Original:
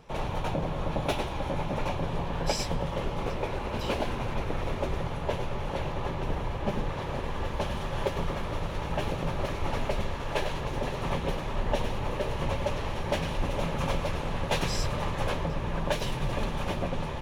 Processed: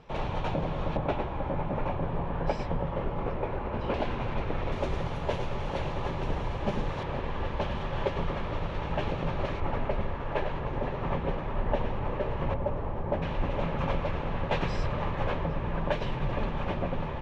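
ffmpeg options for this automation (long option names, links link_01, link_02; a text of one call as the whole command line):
ffmpeg -i in.wav -af "asetnsamples=nb_out_samples=441:pad=0,asendcmd='0.97 lowpass f 1800;3.94 lowpass f 3400;4.72 lowpass f 6700;7.03 lowpass f 3500;9.6 lowpass f 2000;12.54 lowpass f 1100;13.22 lowpass f 2500',lowpass=4300" out.wav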